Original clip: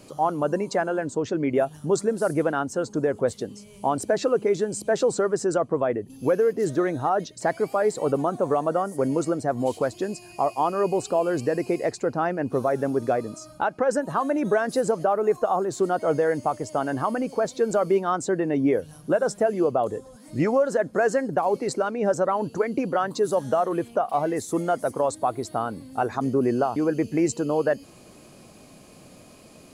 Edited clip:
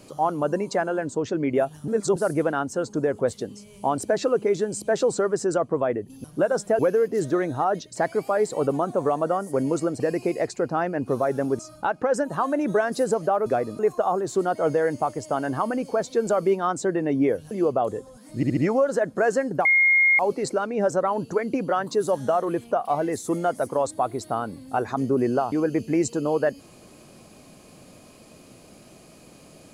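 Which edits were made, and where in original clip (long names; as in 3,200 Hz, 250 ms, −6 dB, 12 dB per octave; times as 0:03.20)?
0:01.88–0:02.16: reverse
0:09.45–0:11.44: remove
0:13.03–0:13.36: move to 0:15.23
0:18.95–0:19.50: move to 0:06.24
0:20.35: stutter 0.07 s, 4 plays
0:21.43: insert tone 2,140 Hz −14.5 dBFS 0.54 s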